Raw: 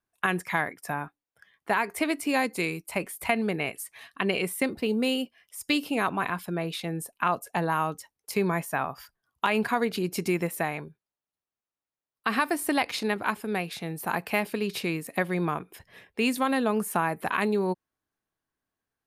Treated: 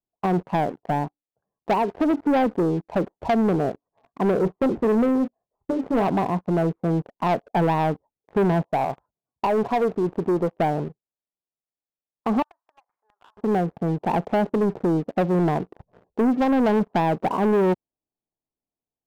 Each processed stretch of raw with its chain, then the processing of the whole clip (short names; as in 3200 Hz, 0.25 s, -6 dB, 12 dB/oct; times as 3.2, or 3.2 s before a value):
4.36–6.08 notch 290 Hz, Q 8.2 + doubler 26 ms -12 dB
8.65–10.6 dynamic EQ 210 Hz, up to -7 dB, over -40 dBFS, Q 0.83 + HPF 78 Hz
12.42–13.37 HPF 1400 Hz 24 dB/oct + compressor 12:1, threshold -35 dBFS
whole clip: steep low-pass 880 Hz 36 dB/oct; bell 80 Hz -5 dB 0.92 oct; sample leveller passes 3; gain +1.5 dB